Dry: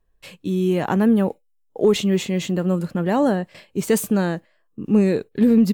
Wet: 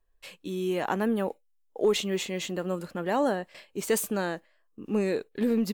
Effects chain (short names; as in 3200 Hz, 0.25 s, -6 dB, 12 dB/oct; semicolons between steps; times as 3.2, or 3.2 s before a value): bell 130 Hz -13.5 dB 2 oct; gain -3.5 dB